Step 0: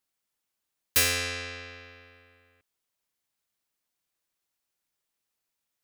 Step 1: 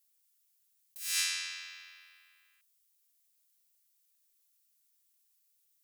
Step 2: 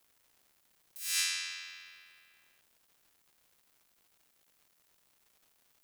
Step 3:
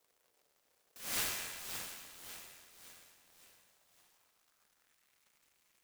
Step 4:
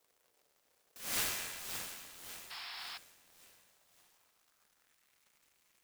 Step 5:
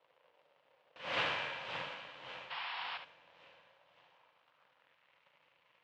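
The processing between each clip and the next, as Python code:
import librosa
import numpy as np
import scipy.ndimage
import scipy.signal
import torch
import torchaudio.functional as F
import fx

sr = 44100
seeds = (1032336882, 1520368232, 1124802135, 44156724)

y1 = scipy.signal.sosfilt(scipy.signal.butter(4, 980.0, 'highpass', fs=sr, output='sos'), x)
y1 = np.diff(y1, prepend=0.0)
y1 = fx.over_compress(y1, sr, threshold_db=-36.0, ratio=-1.0)
y2 = fx.dmg_crackle(y1, sr, seeds[0], per_s=370.0, level_db=-56.0)
y3 = fx.filter_sweep_highpass(y2, sr, from_hz=470.0, to_hz=2200.0, start_s=3.55, end_s=5.16, q=2.8)
y3 = fx.echo_feedback(y3, sr, ms=561, feedback_pct=46, wet_db=-7.5)
y3 = fx.noise_mod_delay(y3, sr, seeds[1], noise_hz=4600.0, depth_ms=0.082)
y3 = F.gain(torch.from_numpy(y3), -4.0).numpy()
y4 = fx.spec_paint(y3, sr, seeds[2], shape='noise', start_s=2.5, length_s=0.48, low_hz=680.0, high_hz=5500.0, level_db=-47.0)
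y4 = F.gain(torch.from_numpy(y4), 1.0).numpy()
y5 = fx.cabinet(y4, sr, low_hz=130.0, low_slope=12, high_hz=3200.0, hz=(140.0, 230.0, 380.0, 540.0, 960.0, 2900.0), db=(4, -9, -7, 9, 7, 4))
y5 = y5 + 10.0 ** (-9.0 / 20.0) * np.pad(y5, (int(70 * sr / 1000.0), 0))[:len(y5)]
y5 = F.gain(torch.from_numpy(y5), 4.0).numpy()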